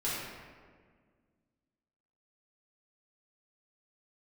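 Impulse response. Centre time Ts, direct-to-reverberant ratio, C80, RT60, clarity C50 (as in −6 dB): 107 ms, −9.5 dB, 0.5 dB, 1.7 s, −2.0 dB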